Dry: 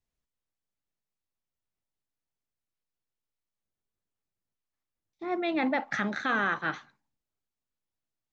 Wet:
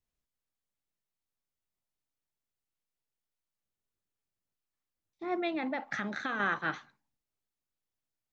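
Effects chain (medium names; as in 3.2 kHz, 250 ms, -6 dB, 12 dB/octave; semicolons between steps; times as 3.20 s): 5.47–6.40 s: compression, threshold -29 dBFS, peak gain reduction 6 dB; trim -2 dB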